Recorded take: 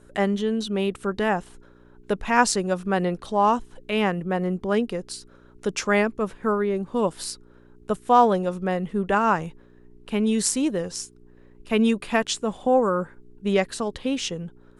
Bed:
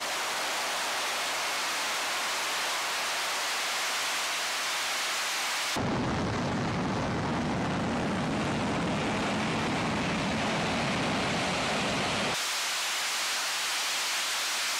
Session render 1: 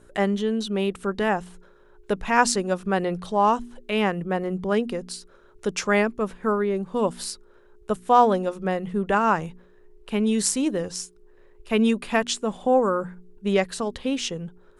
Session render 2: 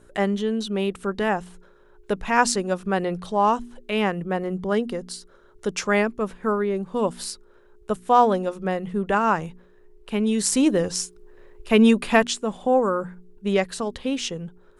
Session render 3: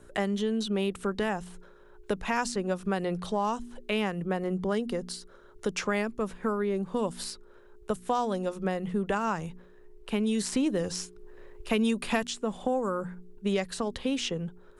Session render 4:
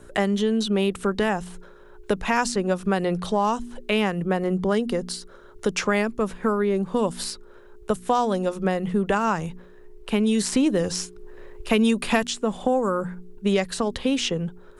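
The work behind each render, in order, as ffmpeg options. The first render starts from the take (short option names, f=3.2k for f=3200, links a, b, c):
-af "bandreject=f=60:t=h:w=4,bandreject=f=120:t=h:w=4,bandreject=f=180:t=h:w=4,bandreject=f=240:t=h:w=4,bandreject=f=300:t=h:w=4"
-filter_complex "[0:a]asettb=1/sr,asplit=3[a][b][c];[a]atrim=end=4.554[d];[b]atrim=start=4.55:end=5.67,asetpts=PTS-STARTPTS,afade=t=in:d=0.004:c=qsin,afade=t=out:st=1.116:d=0.004:c=qsin,bandreject=f=2.5k:w=8.4[e];[c]atrim=start=5.666[f];[d][e]acrossfade=d=0.004:c1=hsin:c2=qsin[g];[g][f]acrossfade=d=0.004:c1=qsin:c2=hsin,asettb=1/sr,asplit=3[h][i][j];[h]atrim=end=10.524[k];[i]atrim=start=10.52:end=12.27,asetpts=PTS-STARTPTS,afade=t=in:d=0.004:c=qsin,afade=t=out:st=1.746:d=0.004:c=qsin,acontrast=35[l];[j]atrim=start=12.266[m];[k][l]acrossfade=d=0.004:c1=hsin:c2=qsin[n];[n][m]acrossfade=d=0.004:c1=qsin:c2=hsin"
-filter_complex "[0:a]acrossover=split=160|3900[a][b][c];[a]acompressor=threshold=-38dB:ratio=4[d];[b]acompressor=threshold=-27dB:ratio=4[e];[c]acompressor=threshold=-39dB:ratio=4[f];[d][e][f]amix=inputs=3:normalize=0"
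-af "volume=6.5dB"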